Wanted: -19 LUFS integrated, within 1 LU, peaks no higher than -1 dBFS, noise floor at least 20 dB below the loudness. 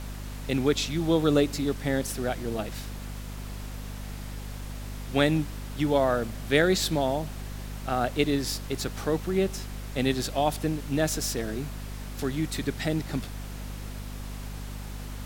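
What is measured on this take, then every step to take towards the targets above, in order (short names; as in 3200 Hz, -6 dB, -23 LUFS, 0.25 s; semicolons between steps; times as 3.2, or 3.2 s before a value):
hum 50 Hz; harmonics up to 250 Hz; hum level -35 dBFS; noise floor -38 dBFS; noise floor target -49 dBFS; loudness -28.5 LUFS; peak -7.5 dBFS; loudness target -19.0 LUFS
-> de-hum 50 Hz, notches 5; noise print and reduce 11 dB; gain +9.5 dB; limiter -1 dBFS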